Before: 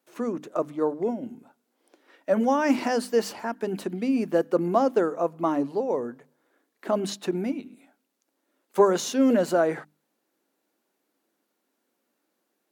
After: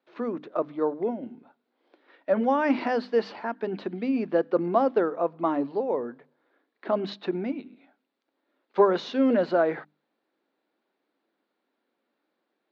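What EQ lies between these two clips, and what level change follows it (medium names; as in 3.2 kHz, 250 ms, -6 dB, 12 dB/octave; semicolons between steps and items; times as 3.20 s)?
high-pass 200 Hz 6 dB/octave; steep low-pass 4.2 kHz 36 dB/octave; peaking EQ 2.9 kHz -3 dB 0.36 oct; 0.0 dB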